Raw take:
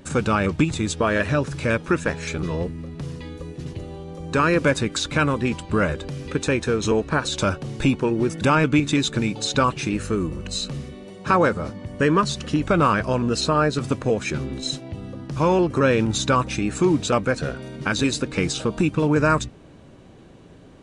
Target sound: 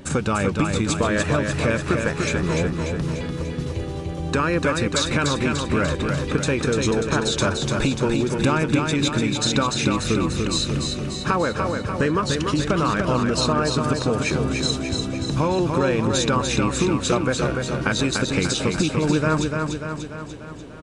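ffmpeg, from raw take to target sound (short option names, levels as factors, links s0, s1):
-af "acompressor=threshold=0.0708:ratio=6,aecho=1:1:294|588|882|1176|1470|1764|2058|2352:0.596|0.345|0.2|0.116|0.0674|0.0391|0.0227|0.0132,volume=1.68"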